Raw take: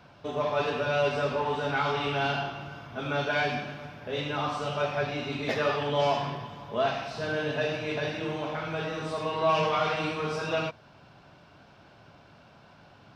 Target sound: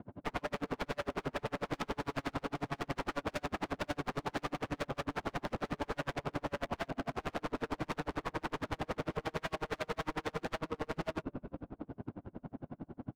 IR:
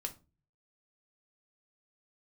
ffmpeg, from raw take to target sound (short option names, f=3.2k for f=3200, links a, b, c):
-filter_complex "[0:a]asuperstop=centerf=2500:order=20:qfactor=6.8,asplit=2[a][b];[b]aecho=0:1:520:0.531[c];[a][c]amix=inputs=2:normalize=0,acompressor=threshold=-37dB:ratio=10,equalizer=f=270:t=o:w=0.81:g=12.5,asplit=2[d][e];[e]asplit=7[f][g][h][i][j][k][l];[f]adelay=232,afreqshift=-58,volume=-12dB[m];[g]adelay=464,afreqshift=-116,volume=-16dB[n];[h]adelay=696,afreqshift=-174,volume=-20dB[o];[i]adelay=928,afreqshift=-232,volume=-24dB[p];[j]adelay=1160,afreqshift=-290,volume=-28.1dB[q];[k]adelay=1392,afreqshift=-348,volume=-32.1dB[r];[l]adelay=1624,afreqshift=-406,volume=-36.1dB[s];[m][n][o][p][q][r][s]amix=inputs=7:normalize=0[t];[d][t]amix=inputs=2:normalize=0,adynamicsmooth=sensitivity=5:basefreq=510,aeval=exprs='0.0126*(abs(mod(val(0)/0.0126+3,4)-2)-1)':c=same,aeval=exprs='val(0)*pow(10,-38*(0.5-0.5*cos(2*PI*11*n/s))/20)':c=same,volume=11dB"